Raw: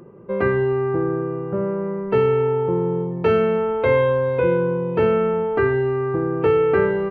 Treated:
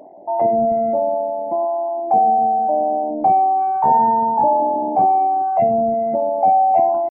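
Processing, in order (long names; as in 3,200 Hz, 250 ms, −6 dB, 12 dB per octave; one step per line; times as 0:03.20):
spectral envelope exaggerated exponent 3
pitch shifter +9.5 semitones
level +3 dB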